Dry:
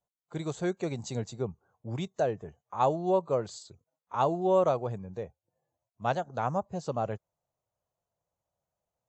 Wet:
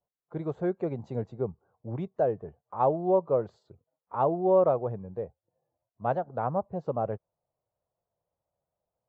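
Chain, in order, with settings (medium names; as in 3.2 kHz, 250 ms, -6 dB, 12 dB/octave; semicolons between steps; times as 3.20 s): low-pass 1.3 kHz 12 dB/octave; peaking EQ 490 Hz +3.5 dB 1 oct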